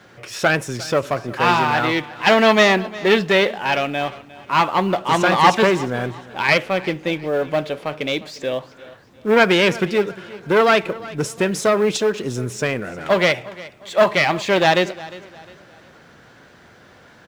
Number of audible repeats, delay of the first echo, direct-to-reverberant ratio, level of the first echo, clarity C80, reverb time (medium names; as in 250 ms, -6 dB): 2, 355 ms, no reverb, -19.0 dB, no reverb, no reverb